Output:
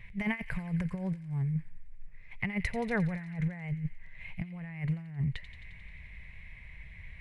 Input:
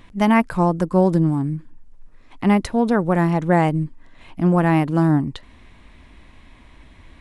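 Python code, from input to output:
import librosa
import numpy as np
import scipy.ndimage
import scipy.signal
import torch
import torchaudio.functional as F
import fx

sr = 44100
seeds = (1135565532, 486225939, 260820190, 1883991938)

p1 = fx.curve_eq(x, sr, hz=(170.0, 290.0, 420.0, 640.0, 1300.0, 2100.0, 3300.0, 6600.0, 12000.0), db=(0, -28, -12, -12, -15, 8, -10, -15, -12))
p2 = fx.over_compress(p1, sr, threshold_db=-26.0, ratio=-0.5)
p3 = p2 + fx.echo_wet_highpass(p2, sr, ms=88, feedback_pct=73, hz=2400.0, wet_db=-10, dry=0)
y = p3 * 10.0 ** (-6.0 / 20.0)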